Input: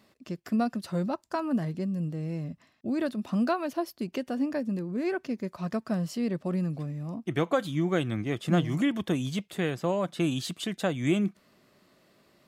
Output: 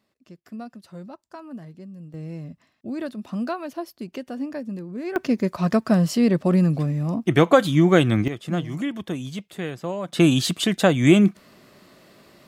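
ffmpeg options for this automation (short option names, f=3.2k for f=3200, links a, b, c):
-af "asetnsamples=n=441:p=0,asendcmd='2.14 volume volume -1dB;5.16 volume volume 11dB;8.28 volume volume -1dB;10.13 volume volume 11dB',volume=-9.5dB"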